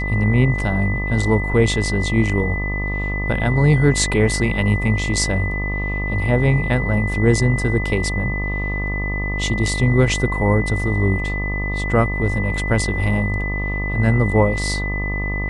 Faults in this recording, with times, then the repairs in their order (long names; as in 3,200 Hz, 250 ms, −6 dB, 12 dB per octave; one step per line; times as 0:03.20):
mains buzz 50 Hz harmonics 25 −24 dBFS
whistle 2,000 Hz −25 dBFS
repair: notch filter 2,000 Hz, Q 30
hum removal 50 Hz, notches 25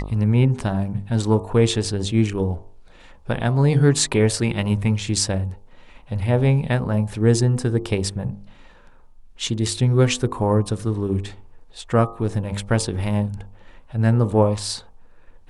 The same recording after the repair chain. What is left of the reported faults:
none of them is left